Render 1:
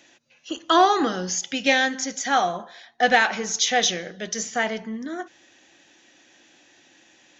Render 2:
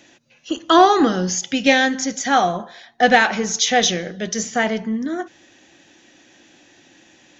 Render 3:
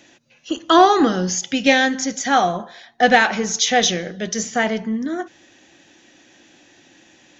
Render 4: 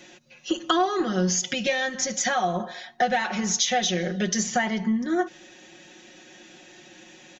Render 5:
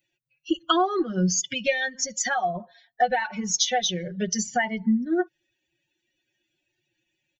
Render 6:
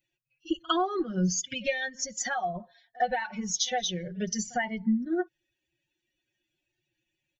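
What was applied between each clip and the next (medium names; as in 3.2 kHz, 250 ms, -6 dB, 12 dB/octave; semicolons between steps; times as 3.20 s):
bass shelf 340 Hz +8.5 dB; trim +3 dB
no audible change
compression 12:1, threshold -23 dBFS, peak gain reduction 16.5 dB; comb 5.5 ms, depth 90%
expander on every frequency bin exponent 2; trim +3.5 dB
bass shelf 92 Hz +9.5 dB; pre-echo 54 ms -24 dB; trim -5.5 dB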